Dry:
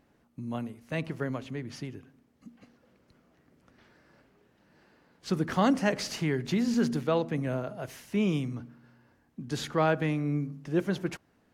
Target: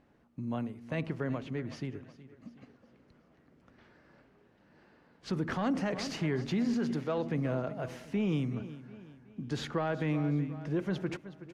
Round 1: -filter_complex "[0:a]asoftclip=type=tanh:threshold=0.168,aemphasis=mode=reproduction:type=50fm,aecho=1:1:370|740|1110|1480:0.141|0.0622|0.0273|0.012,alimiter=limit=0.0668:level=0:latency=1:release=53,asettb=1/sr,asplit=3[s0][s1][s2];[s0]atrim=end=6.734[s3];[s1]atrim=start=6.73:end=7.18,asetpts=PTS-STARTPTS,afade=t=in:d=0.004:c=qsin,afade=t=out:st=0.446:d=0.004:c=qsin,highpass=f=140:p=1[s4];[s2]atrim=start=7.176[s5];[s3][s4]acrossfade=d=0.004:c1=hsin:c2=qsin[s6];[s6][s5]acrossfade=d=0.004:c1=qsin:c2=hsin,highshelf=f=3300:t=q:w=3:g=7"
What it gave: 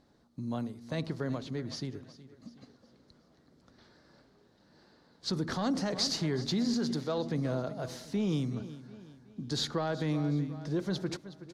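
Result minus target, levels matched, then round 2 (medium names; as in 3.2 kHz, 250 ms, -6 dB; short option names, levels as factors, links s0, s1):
4 kHz band +8.5 dB
-filter_complex "[0:a]asoftclip=type=tanh:threshold=0.168,aemphasis=mode=reproduction:type=50fm,aecho=1:1:370|740|1110|1480:0.141|0.0622|0.0273|0.012,alimiter=limit=0.0668:level=0:latency=1:release=53,asettb=1/sr,asplit=3[s0][s1][s2];[s0]atrim=end=6.734[s3];[s1]atrim=start=6.73:end=7.18,asetpts=PTS-STARTPTS,afade=t=in:d=0.004:c=qsin,afade=t=out:st=0.446:d=0.004:c=qsin,highpass=f=140:p=1[s4];[s2]atrim=start=7.176[s5];[s3][s4]acrossfade=d=0.004:c1=hsin:c2=qsin[s6];[s6][s5]acrossfade=d=0.004:c1=qsin:c2=hsin"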